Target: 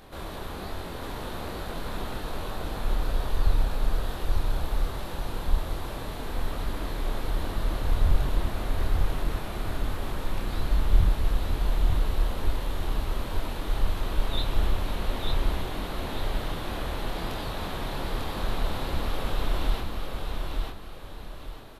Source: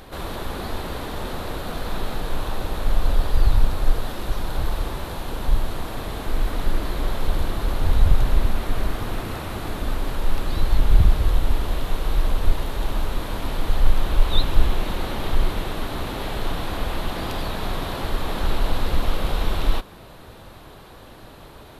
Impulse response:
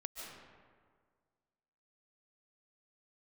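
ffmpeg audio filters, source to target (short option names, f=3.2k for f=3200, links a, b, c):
-af "flanger=delay=22.5:depth=7:speed=1.2,aecho=1:1:896|1792|2688|3584:0.668|0.214|0.0684|0.0219,volume=-3.5dB"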